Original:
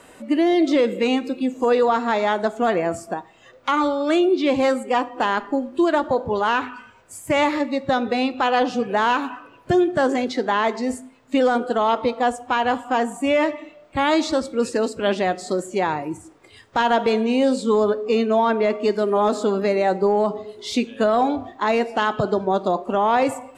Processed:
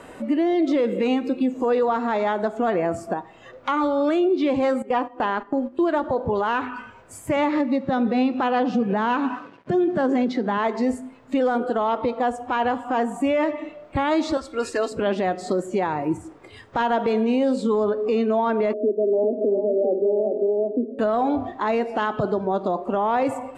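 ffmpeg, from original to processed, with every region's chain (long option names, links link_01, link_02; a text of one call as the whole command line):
ffmpeg -i in.wav -filter_complex "[0:a]asettb=1/sr,asplit=3[link_01][link_02][link_03];[link_01]atrim=end=4.824[link_04];[link_02]atrim=start=4.82:end=5.89,asetpts=PTS-STARTPTS,afade=type=in:duration=0.004:curve=qsin,afade=type=out:start_time=1.066:duration=0.004:curve=qsin,acrossover=split=5500[link_05][link_06];[link_06]acompressor=threshold=-57dB:ratio=4:attack=1:release=60[link_07];[link_05][link_07]amix=inputs=2:normalize=0,agate=range=-11dB:threshold=-32dB:ratio=16:release=100:detection=peak[link_08];[link_03]atrim=start=5.886[link_09];[link_04][link_08]acrossfade=duration=0.004:curve1=hsin:curve2=qsin[link_10];[link_10][link_09]acrossfade=duration=0.004:curve1=qsin:curve2=hsin,asettb=1/sr,asplit=3[link_11][link_12][link_13];[link_11]atrim=end=7.364[link_14];[link_12]atrim=start=7.36:end=10.58,asetpts=PTS-STARTPTS,afade=type=in:duration=0.004:curve=qsin,afade=type=out:start_time=3.216:duration=0.004:curve=qsin,equalizer=frequency=200:width=1.9:gain=9.5,aeval=exprs='sgn(val(0))*max(abs(val(0))-0.00299,0)':channel_layout=same,highpass=110,lowpass=6900[link_15];[link_13]atrim=start=10.576[link_16];[link_14][link_15]acrossfade=duration=0.004:curve1=hsin:curve2=qsin[link_17];[link_17][link_16]acrossfade=duration=0.004:curve1=qsin:curve2=hsin,asettb=1/sr,asplit=3[link_18][link_19][link_20];[link_18]atrim=end=14.374[link_21];[link_19]atrim=start=14.37:end=14.92,asetpts=PTS-STARTPTS,afade=type=in:duration=0.004:curve=qsin,afade=type=out:start_time=0.546:duration=0.004:curve=qsin,equalizer=frequency=220:width=0.55:gain=-14,aecho=1:1:2.9:0.57,atrim=end_sample=24255[link_22];[link_20]atrim=start=14.916[link_23];[link_21][link_22]acrossfade=duration=0.004:curve1=hsin:curve2=qsin[link_24];[link_24][link_23]acrossfade=duration=0.004:curve1=qsin:curve2=hsin,asettb=1/sr,asplit=3[link_25][link_26][link_27];[link_25]atrim=end=18.734[link_28];[link_26]atrim=start=18.73:end=20.99,asetpts=PTS-STARTPTS,afade=type=in:duration=0.004:curve=qsin,afade=type=out:start_time=2.256:duration=0.004:curve=qsin,acrusher=bits=7:mix=0:aa=0.5,asuperpass=centerf=390:order=12:qfactor=0.88,aecho=1:1:397:0.501,atrim=end_sample=99666[link_29];[link_27]atrim=start=20.986[link_30];[link_28][link_29]acrossfade=duration=0.004:curve1=hsin:curve2=qsin[link_31];[link_31][link_30]acrossfade=duration=0.004:curve1=qsin:curve2=hsin,highshelf=frequency=2800:gain=-11,alimiter=limit=-20.5dB:level=0:latency=1:release=205,volume=6.5dB" out.wav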